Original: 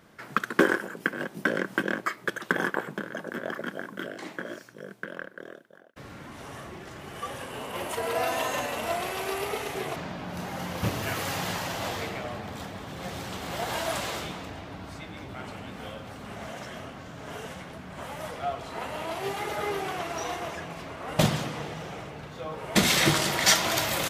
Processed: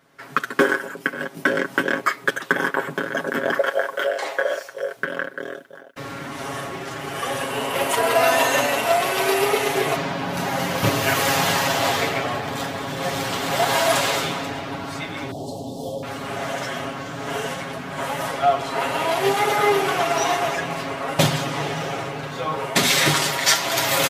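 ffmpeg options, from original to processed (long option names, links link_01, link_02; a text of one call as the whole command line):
ffmpeg -i in.wav -filter_complex "[0:a]asettb=1/sr,asplit=3[link_01][link_02][link_03];[link_01]atrim=end=3.584[link_04];[link_02]atrim=start=3.58:end=4.97,asetpts=PTS-STARTPTS,afade=type=in:duration=0.004:curve=qsin,afade=type=out:start_time=1.386:duration=0.004:curve=qsin,lowshelf=frequency=360:width_type=q:width=3:gain=-14[link_05];[link_03]atrim=start=4.966[link_06];[link_04][link_05]acrossfade=duration=0.004:curve1=hsin:curve2=qsin[link_07];[link_07][link_06]acrossfade=duration=0.004:curve1=qsin:curve2=hsin,asettb=1/sr,asplit=3[link_08][link_09][link_10];[link_08]atrim=end=15.314[link_11];[link_09]atrim=start=15.31:end=16.03,asetpts=PTS-STARTPTS,afade=type=in:duration=0.004:curve=qsin,afade=type=out:start_time=0.716:duration=0.004:curve=qsin,asuperstop=centerf=1800:order=8:qfactor=0.57[link_12];[link_10]atrim=start=16.026[link_13];[link_11][link_12]acrossfade=duration=0.004:curve1=hsin:curve2=qsin[link_14];[link_14][link_13]acrossfade=duration=0.004:curve1=qsin:curve2=hsin,lowshelf=frequency=130:gain=-11,aecho=1:1:7.3:0.71,dynaudnorm=framelen=130:gausssize=3:maxgain=13.5dB,volume=-3dB" out.wav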